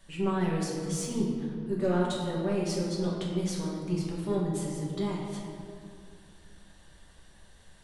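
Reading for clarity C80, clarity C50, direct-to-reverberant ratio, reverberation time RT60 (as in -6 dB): 2.5 dB, 1.0 dB, -5.0 dB, 2.2 s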